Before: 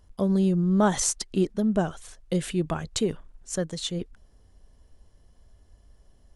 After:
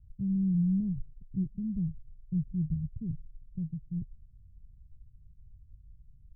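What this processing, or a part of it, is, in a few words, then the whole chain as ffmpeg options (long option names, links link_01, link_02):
the neighbour's flat through the wall: -af "lowpass=frequency=150:width=0.5412,lowpass=frequency=150:width=1.3066,equalizer=frequency=130:width_type=o:width=0.77:gain=6,volume=1.5dB"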